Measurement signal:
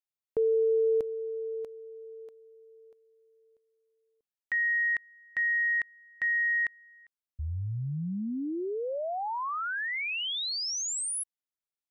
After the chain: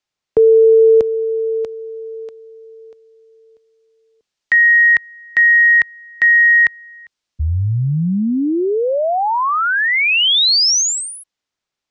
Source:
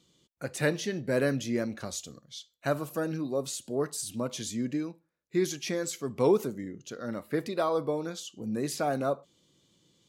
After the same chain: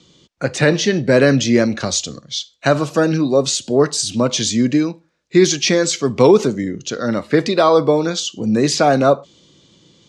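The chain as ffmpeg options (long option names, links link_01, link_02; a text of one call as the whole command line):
ffmpeg -i in.wav -filter_complex "[0:a]lowpass=frequency=6600:width=0.5412,lowpass=frequency=6600:width=1.3066,acrossover=split=100|1100|2600[link_01][link_02][link_03][link_04];[link_04]dynaudnorm=framelen=120:gausssize=17:maxgain=4.5dB[link_05];[link_01][link_02][link_03][link_05]amix=inputs=4:normalize=0,alimiter=level_in=17dB:limit=-1dB:release=50:level=0:latency=1,volume=-1dB" out.wav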